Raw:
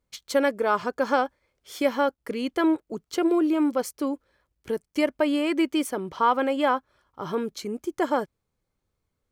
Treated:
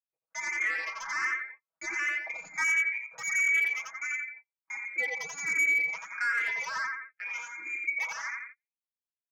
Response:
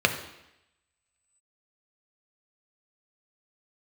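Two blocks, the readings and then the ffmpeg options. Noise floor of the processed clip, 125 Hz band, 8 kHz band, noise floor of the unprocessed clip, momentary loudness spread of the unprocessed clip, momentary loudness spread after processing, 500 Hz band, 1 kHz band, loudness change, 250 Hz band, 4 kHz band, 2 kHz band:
under -85 dBFS, no reading, +2.5 dB, -80 dBFS, 10 LU, 14 LU, -26.0 dB, -13.0 dB, -3.5 dB, under -30 dB, -9.0 dB, +7.5 dB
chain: -filter_complex "[0:a]bandreject=f=50:t=h:w=6,bandreject=f=100:t=h:w=6,bandreject=f=150:t=h:w=6,bandreject=f=200:t=h:w=6,bandreject=f=250:t=h:w=6,bandreject=f=300:t=h:w=6,bandreject=f=350:t=h:w=6,bandreject=f=400:t=h:w=6,bandreject=f=450:t=h:w=6,bandreject=f=500:t=h:w=6,lowpass=f=2200:t=q:w=0.5098,lowpass=f=2200:t=q:w=0.6013,lowpass=f=2200:t=q:w=0.9,lowpass=f=2200:t=q:w=2.563,afreqshift=-2600,aecho=1:1:87|174|261|348|435:0.668|0.287|0.124|0.0531|0.0228,alimiter=limit=0.188:level=0:latency=1:release=52,highpass=43,aresample=16000,asoftclip=type=tanh:threshold=0.075,aresample=44100,agate=range=0.0158:threshold=0.00794:ratio=16:detection=peak,equalizer=f=120:w=0.97:g=-9.5,aecho=1:1:6.2:0.9,volume=9.44,asoftclip=hard,volume=0.106,asplit=2[s0][s1];[s1]afreqshift=1.4[s2];[s0][s2]amix=inputs=2:normalize=1,volume=0.75"

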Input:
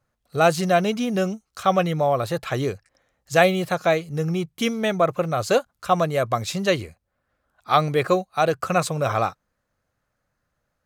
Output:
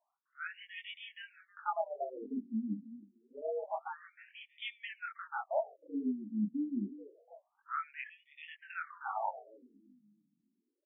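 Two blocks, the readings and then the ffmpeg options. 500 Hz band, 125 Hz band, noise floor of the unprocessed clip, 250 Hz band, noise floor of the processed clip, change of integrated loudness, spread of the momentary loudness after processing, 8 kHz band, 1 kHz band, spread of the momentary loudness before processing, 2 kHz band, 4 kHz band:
-21.0 dB, under -25 dB, -77 dBFS, -13.0 dB, -83 dBFS, -17.5 dB, 16 LU, under -40 dB, -17.5 dB, 7 LU, -17.0 dB, -19.5 dB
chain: -filter_complex "[0:a]asplit=2[s0][s1];[s1]aecho=0:1:318|636|954:0.0668|0.0261|0.0102[s2];[s0][s2]amix=inputs=2:normalize=0,afreqshift=100,bass=f=250:g=7,treble=f=4000:g=-9,areverse,acompressor=threshold=0.0398:ratio=6,areverse,equalizer=f=11000:w=0.39:g=5.5,flanger=delay=19.5:depth=4.3:speed=1.3,afftfilt=real='re*between(b*sr/1024,220*pow(2600/220,0.5+0.5*sin(2*PI*0.27*pts/sr))/1.41,220*pow(2600/220,0.5+0.5*sin(2*PI*0.27*pts/sr))*1.41)':imag='im*between(b*sr/1024,220*pow(2600/220,0.5+0.5*sin(2*PI*0.27*pts/sr))/1.41,220*pow(2600/220,0.5+0.5*sin(2*PI*0.27*pts/sr))*1.41)':win_size=1024:overlap=0.75,volume=1.12"

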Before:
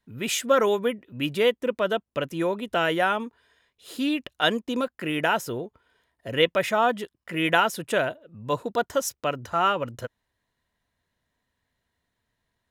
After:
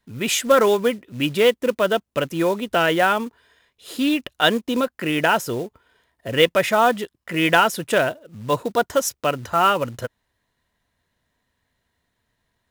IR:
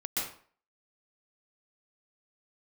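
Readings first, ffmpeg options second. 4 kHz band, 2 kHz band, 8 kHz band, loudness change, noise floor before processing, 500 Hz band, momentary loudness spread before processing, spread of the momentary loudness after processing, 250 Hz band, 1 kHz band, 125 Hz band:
+5.0 dB, +5.0 dB, +6.0 dB, +5.0 dB, -81 dBFS, +5.0 dB, 12 LU, 12 LU, +5.5 dB, +5.0 dB, +5.5 dB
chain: -af "acontrast=35,acrusher=bits=5:mode=log:mix=0:aa=0.000001"

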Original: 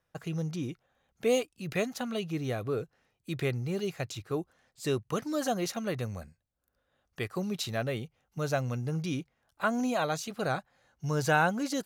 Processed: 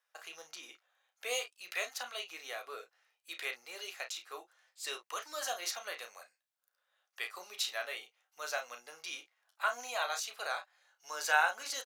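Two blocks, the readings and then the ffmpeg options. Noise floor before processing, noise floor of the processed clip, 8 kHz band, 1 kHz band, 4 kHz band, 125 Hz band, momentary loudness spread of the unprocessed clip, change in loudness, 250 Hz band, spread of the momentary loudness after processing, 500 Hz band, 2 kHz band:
-80 dBFS, -85 dBFS, +1.0 dB, -3.5 dB, +1.0 dB, under -40 dB, 11 LU, -5.0 dB, -32.0 dB, 14 LU, -12.0 dB, 0.0 dB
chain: -filter_complex "[0:a]tiltshelf=f=840:g=-5,acrossover=split=560|7300[s0][s1][s2];[s0]acrusher=bits=2:mix=0:aa=0.5[s3];[s1]aecho=1:1:12|33|50:0.335|0.447|0.2[s4];[s3][s4][s2]amix=inputs=3:normalize=0,volume=0.596"

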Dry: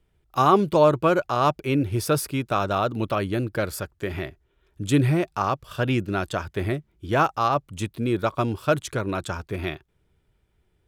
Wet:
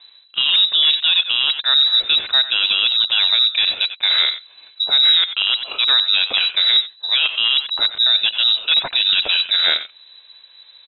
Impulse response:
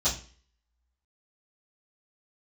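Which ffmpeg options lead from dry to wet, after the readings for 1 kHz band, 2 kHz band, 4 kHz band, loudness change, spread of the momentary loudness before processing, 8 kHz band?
-9.5 dB, +10.0 dB, +28.0 dB, +10.0 dB, 12 LU, under -40 dB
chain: -filter_complex "[0:a]areverse,acompressor=threshold=0.0224:ratio=5,areverse,asplit=2[s0][s1];[s1]adelay=90,highpass=300,lowpass=3400,asoftclip=type=hard:threshold=0.0224,volume=0.251[s2];[s0][s2]amix=inputs=2:normalize=0,aeval=exprs='0.0501*(abs(mod(val(0)/0.0501+3,4)-2)-1)':c=same,lowpass=f=3400:t=q:w=0.5098,lowpass=f=3400:t=q:w=0.6013,lowpass=f=3400:t=q:w=0.9,lowpass=f=3400:t=q:w=2.563,afreqshift=-4000,alimiter=level_in=20:limit=0.891:release=50:level=0:latency=1,volume=0.562"

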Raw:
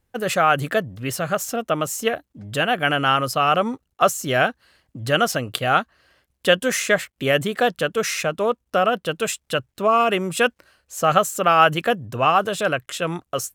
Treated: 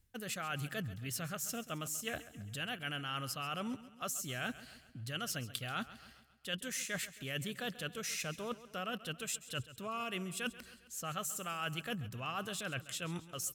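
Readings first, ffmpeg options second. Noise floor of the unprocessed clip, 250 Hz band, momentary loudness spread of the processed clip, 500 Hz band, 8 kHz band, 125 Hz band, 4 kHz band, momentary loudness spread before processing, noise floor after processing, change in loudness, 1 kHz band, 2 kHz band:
-74 dBFS, -16.0 dB, 5 LU, -24.5 dB, -11.0 dB, -13.5 dB, -14.5 dB, 8 LU, -62 dBFS, -19.0 dB, -23.5 dB, -18.5 dB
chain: -af "equalizer=f=640:w=0.43:g=-15,areverse,acompressor=threshold=0.00708:ratio=5,areverse,aecho=1:1:135|270|405|540|675:0.158|0.0824|0.0429|0.0223|0.0116,volume=1.58"

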